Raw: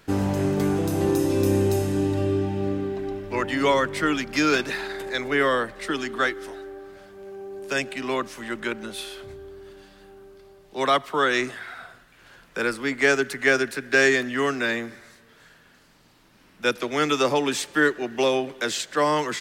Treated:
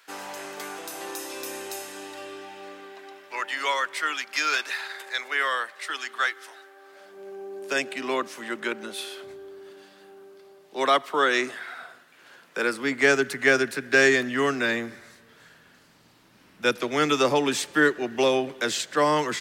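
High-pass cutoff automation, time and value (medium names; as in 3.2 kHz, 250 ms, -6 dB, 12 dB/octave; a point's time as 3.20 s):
6.76 s 1 kHz
7.23 s 260 Hz
12.62 s 260 Hz
13.15 s 65 Hz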